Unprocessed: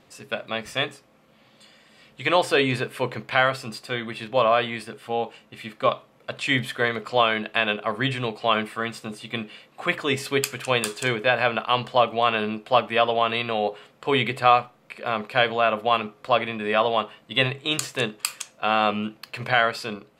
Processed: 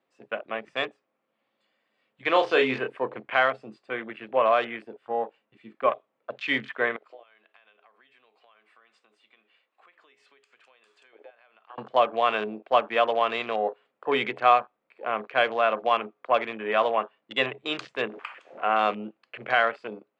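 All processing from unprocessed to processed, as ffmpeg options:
-filter_complex "[0:a]asettb=1/sr,asplit=3[a][b][c];[a]atrim=end=2.314[d];[b]atrim=start=2.31:end=2.97,asetpts=PTS-STARTPTS,afade=t=in:d=0.004:c=qsin,afade=t=out:st=0.656:d=0.004:c=qsin,highshelf=f=9k:g=8,asplit=2[e][f];[f]adelay=31,volume=-6.5dB[g];[e][g]amix=inputs=2:normalize=0,atrim=end_sample=29106[h];[c]atrim=start=2.966[i];[d][h]acrossfade=d=0.004:c1=hsin:c2=qsin[j];[j][i]acrossfade=d=0.004:c1=qsin:c2=hsin,asettb=1/sr,asplit=3[k][l][m];[k]atrim=end=6.964[n];[l]atrim=start=6.96:end=11.78,asetpts=PTS-STARTPTS,afade=t=in:d=0.004:c=qsin,afade=t=out:st=4.816:d=0.004:c=qsin,acompressor=threshold=-32dB:ratio=20:attack=3.2:release=140:knee=1:detection=peak,highpass=f=840:p=1[o];[m]atrim=start=11.776[p];[n][o]acrossfade=d=0.004:c1=hsin:c2=qsin[q];[q][p]acrossfade=d=0.004:c1=qsin:c2=hsin,asettb=1/sr,asplit=3[r][s][t];[r]atrim=end=18.094[u];[s]atrim=start=18.09:end=18.79,asetpts=PTS-STARTPTS,afade=t=in:d=0.004:c=qsin,afade=t=out:st=0.696:d=0.004:c=qsin,aeval=exprs='val(0)+0.5*0.0224*sgn(val(0))':c=same,bass=f=250:g=-3,treble=f=4k:g=-12[v];[t]atrim=start=18.786[w];[u][v]acrossfade=d=0.004:c1=hsin:c2=qsin[x];[x][w]acrossfade=d=0.004:c1=qsin:c2=hsin,lowpass=f=8.3k:w=0.5412,lowpass=f=8.3k:w=1.3066,afwtdn=0.0224,acrossover=split=240 3200:gain=0.112 1 0.224[y][z][aa];[y][z][aa]amix=inputs=3:normalize=0,volume=-1.5dB"

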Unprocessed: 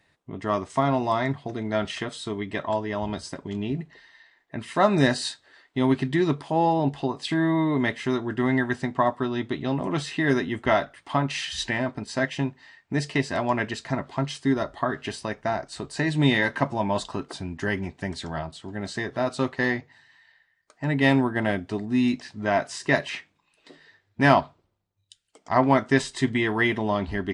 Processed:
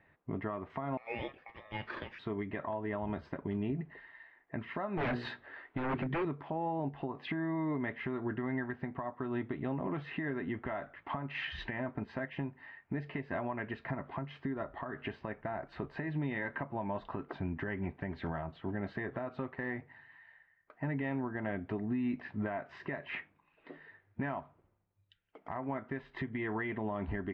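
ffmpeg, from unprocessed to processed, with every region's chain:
-filter_complex "[0:a]asettb=1/sr,asplit=3[a][b][c];[a]atrim=end=0.974[d];[b]atrim=start=0.97:end=2.19,asetpts=PTS-STARTPTS,afade=t=in:d=0.004:c=qsin,afade=t=out:st=1.216:d=0.004:c=qsin,highpass=1.3k,aeval=exprs='val(0)*sin(2*PI*1500*n/s)':c=same[e];[c]atrim=start=2.186[f];[d][e]acrossfade=d=0.004:c1=hsin:c2=qsin[g];[g][f]acrossfade=d=0.004:c1=qsin:c2=hsin,asettb=1/sr,asplit=3[h][i][j];[h]atrim=end=4.974[k];[i]atrim=start=4.97:end=6.25,asetpts=PTS-STARTPTS,afade=t=in:d=0.004:c=qsin,afade=t=out:st=1.276:d=0.004:c=qsin,bandreject=f=60:t=h:w=6,bandreject=f=120:t=h:w=6,bandreject=f=180:t=h:w=6,bandreject=f=240:t=h:w=6,bandreject=f=300:t=h:w=6,bandreject=f=360:t=h:w=6,bandreject=f=420:t=h:w=6,bandreject=f=480:t=h:w=6,acontrast=47,aeval=exprs='0.141*(abs(mod(val(0)/0.141+3,4)-2)-1)':c=same[l];[j]atrim=start=6.246[m];[k][l]acrossfade=d=0.004:c1=hsin:c2=qsin[n];[n][m]acrossfade=d=0.004:c1=qsin:c2=hsin,lowpass=f=2.3k:w=0.5412,lowpass=f=2.3k:w=1.3066,acompressor=threshold=-28dB:ratio=16,alimiter=level_in=2.5dB:limit=-24dB:level=0:latency=1:release=245,volume=-2.5dB"

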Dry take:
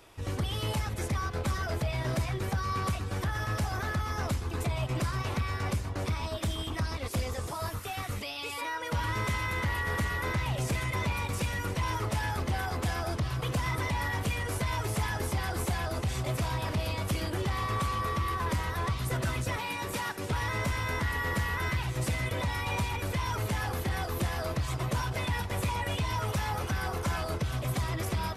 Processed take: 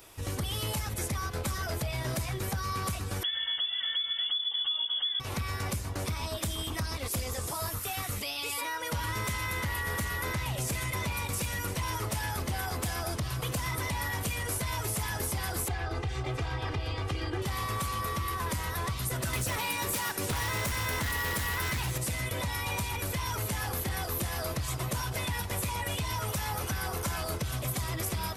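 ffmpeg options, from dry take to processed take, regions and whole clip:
-filter_complex "[0:a]asettb=1/sr,asplit=3[a][b][c];[a]atrim=end=3.234[d];[b]atrim=start=3.23:end=5.2,asetpts=PTS-STARTPTS,afade=t=in:d=0.004:c=qsin,afade=t=out:st=1.966:d=0.004:c=qsin,asuperstop=centerf=1000:order=4:qfactor=1.2,asubboost=boost=4:cutoff=170,lowpass=f=3k:t=q:w=0.5098,lowpass=f=3k:t=q:w=0.6013,lowpass=f=3k:t=q:w=0.9,lowpass=f=3k:t=q:w=2.563,afreqshift=-3500[e];[c]atrim=start=5.196[f];[d][e]acrossfade=d=0.004:c1=hsin:c2=qsin[g];[g][f]acrossfade=d=0.004:c1=qsin:c2=hsin,asettb=1/sr,asplit=3[h][i][j];[h]atrim=end=15.684[k];[i]atrim=start=15.68:end=17.42,asetpts=PTS-STARTPTS,afade=t=in:d=0.004:c=qsin,afade=t=out:st=1.736:d=0.004:c=qsin,lowpass=3.2k,aecho=1:1:2.5:0.71,atrim=end_sample=76734[l];[j]atrim=start=17.416[m];[k][l]acrossfade=d=0.004:c1=hsin:c2=qsin[n];[n][m]acrossfade=d=0.004:c1=qsin:c2=hsin,asettb=1/sr,asplit=3[o][p][q];[o]atrim=end=19.334[r];[p]atrim=start=19.33:end=21.98,asetpts=PTS-STARTPTS,afade=t=in:d=0.004:c=qsin,afade=t=out:st=2.646:d=0.004:c=qsin,acontrast=64,aeval=exprs='0.0891*(abs(mod(val(0)/0.0891+3,4)-2)-1)':c=same[s];[q]atrim=start=21.976[t];[r][s]acrossfade=d=0.004:c1=hsin:c2=qsin[u];[u][t]acrossfade=d=0.004:c1=qsin:c2=hsin,aemphasis=mode=production:type=50kf,acompressor=threshold=-29dB:ratio=6"

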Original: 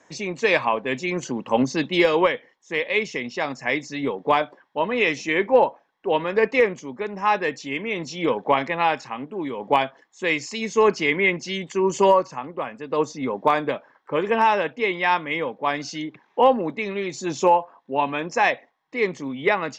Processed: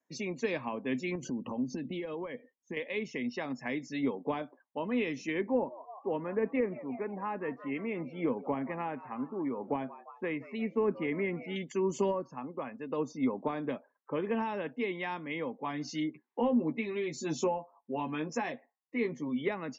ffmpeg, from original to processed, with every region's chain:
-filter_complex "[0:a]asettb=1/sr,asplit=3[a][b][c];[a]atrim=end=1.154[d];[b]atrim=start=1.15:end=2.77,asetpts=PTS-STARTPTS,afade=t=in:d=0.004:c=qsin,afade=t=out:st=1.616:d=0.004:c=qsin,lowshelf=f=420:g=10,acompressor=threshold=-28dB:ratio=8:attack=3.2:release=140:knee=1:detection=peak[e];[c]atrim=start=2.766[f];[d][e]acrossfade=d=0.004:c1=hsin:c2=qsin[g];[g][f]acrossfade=d=0.004:c1=qsin:c2=hsin,asettb=1/sr,asplit=3[h][i][j];[h]atrim=end=5.414[k];[i]atrim=start=5.41:end=11.56,asetpts=PTS-STARTPTS,afade=t=in:d=0.004:c=qsin,afade=t=out:st=6.146:d=0.004:c=qsin,lowpass=1.9k,asplit=6[l][m][n][o][p][q];[m]adelay=174,afreqshift=100,volume=-19dB[r];[n]adelay=348,afreqshift=200,volume=-24.2dB[s];[o]adelay=522,afreqshift=300,volume=-29.4dB[t];[p]adelay=696,afreqshift=400,volume=-34.6dB[u];[q]adelay=870,afreqshift=500,volume=-39.8dB[v];[l][r][s][t][u][v]amix=inputs=6:normalize=0,atrim=end_sample=271215[w];[j]atrim=start=11.556[x];[k][w]acrossfade=d=0.004:c1=hsin:c2=qsin[y];[y][x]acrossfade=d=0.004:c1=qsin:c2=hsin,asettb=1/sr,asplit=3[z][aa][ab];[z]atrim=end=15.564[ac];[aa]atrim=start=15.56:end=19.41,asetpts=PTS-STARTPTS,afade=t=in:d=0.004:c=qsin,afade=t=out:st=3.846:d=0.004:c=qsin,bandreject=f=590:w=15,asplit=2[ad][ae];[ae]adelay=13,volume=-5dB[af];[ad][af]amix=inputs=2:normalize=0,atrim=end_sample=169785[ag];[ab]atrim=start=19.406[ah];[ac][ag]acrossfade=d=0.004:c1=hsin:c2=qsin[ai];[ai][ah]acrossfade=d=0.004:c1=qsin:c2=hsin,afftdn=nr=23:nf=-42,equalizer=f=250:t=o:w=0.32:g=8,acrossover=split=390[aj][ak];[ak]acompressor=threshold=-29dB:ratio=4[al];[aj][al]amix=inputs=2:normalize=0,volume=-7.5dB"

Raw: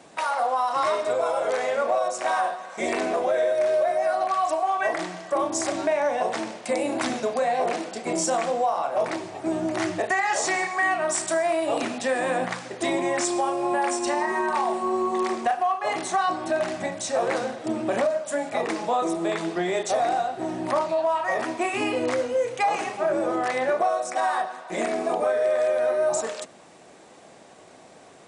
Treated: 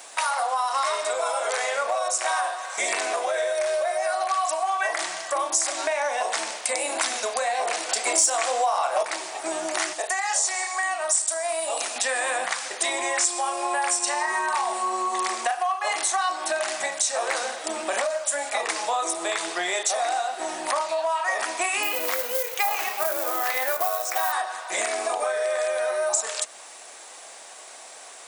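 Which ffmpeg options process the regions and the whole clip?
-filter_complex "[0:a]asettb=1/sr,asplit=3[a][b][c];[a]atrim=end=7.894[d];[b]atrim=start=7.89:end=9.03,asetpts=PTS-STARTPTS,afade=t=in:d=0.004:c=qsin,afade=t=out:st=1.136:d=0.004:c=qsin,highpass=220,acontrast=69[e];[c]atrim=start=9.026[f];[d][e]acrossfade=d=0.004:c1=hsin:c2=qsin[g];[g][f]acrossfade=d=0.004:c1=qsin:c2=hsin,asettb=1/sr,asplit=3[h][i][j];[h]atrim=end=9.934[k];[i]atrim=start=9.93:end=11.96,asetpts=PTS-STARTPTS,afade=t=in:d=0.004:c=qsin,afade=t=out:st=2.026:d=0.004:c=qsin,highpass=440,equalizer=f=1.9k:w=0.58:g=-8,aeval=exprs='val(0)+0.00501*(sin(2*PI*50*n/s)+sin(2*PI*2*50*n/s)/2+sin(2*PI*3*50*n/s)/3+sin(2*PI*4*50*n/s)/4+sin(2*PI*5*50*n/s)/5)':c=same[l];[j]atrim=start=11.956[m];[k][l]acrossfade=d=0.004:c1=hsin:c2=qsin[n];[n][m]acrossfade=d=0.004:c1=qsin:c2=hsin,asettb=1/sr,asplit=3[o][p][q];[o]atrim=end=21.834[r];[p]atrim=start=21.83:end=24.32,asetpts=PTS-STARTPTS,afade=t=in:d=0.004:c=qsin,afade=t=out:st=2.486:d=0.004:c=qsin,lowpass=5.5k,acrusher=bits=5:mode=log:mix=0:aa=0.000001[s];[q]atrim=start=24.316[t];[r][s]acrossfade=d=0.004:c1=hsin:c2=qsin[u];[u][t]acrossfade=d=0.004:c1=qsin:c2=hsin,highpass=810,aemphasis=mode=production:type=50fm,acompressor=threshold=-31dB:ratio=2.5,volume=7dB"

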